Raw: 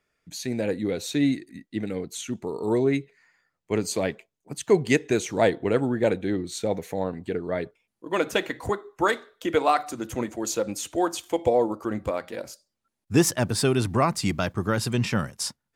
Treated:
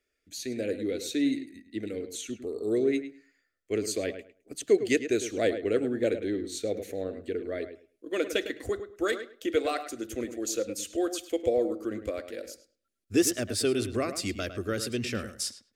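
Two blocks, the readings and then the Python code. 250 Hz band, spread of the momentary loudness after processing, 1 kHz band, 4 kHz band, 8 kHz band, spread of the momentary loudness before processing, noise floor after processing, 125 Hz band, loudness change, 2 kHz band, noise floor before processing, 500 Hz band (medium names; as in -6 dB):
-4.0 dB, 11 LU, -12.5 dB, -3.0 dB, -2.5 dB, 10 LU, -80 dBFS, -12.0 dB, -4.5 dB, -5.5 dB, -83 dBFS, -3.5 dB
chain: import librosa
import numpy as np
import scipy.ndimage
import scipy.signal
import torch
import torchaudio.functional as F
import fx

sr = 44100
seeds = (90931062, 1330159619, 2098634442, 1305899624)

p1 = fx.fixed_phaser(x, sr, hz=380.0, stages=4)
p2 = p1 + fx.echo_filtered(p1, sr, ms=105, feedback_pct=19, hz=2900.0, wet_db=-10, dry=0)
y = F.gain(torch.from_numpy(p2), -2.5).numpy()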